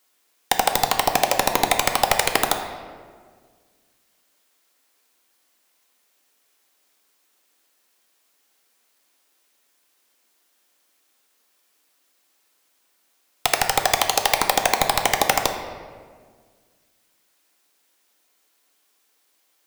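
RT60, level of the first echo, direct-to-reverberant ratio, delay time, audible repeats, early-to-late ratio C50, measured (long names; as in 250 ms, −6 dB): 1.7 s, no echo audible, 4.5 dB, no echo audible, no echo audible, 7.0 dB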